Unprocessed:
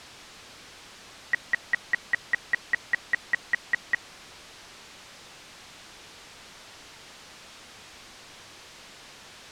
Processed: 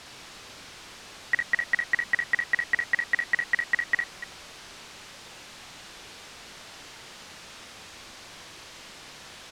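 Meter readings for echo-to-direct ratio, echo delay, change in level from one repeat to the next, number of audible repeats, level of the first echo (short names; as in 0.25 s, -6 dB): -3.5 dB, 56 ms, no steady repeat, 2, -4.5 dB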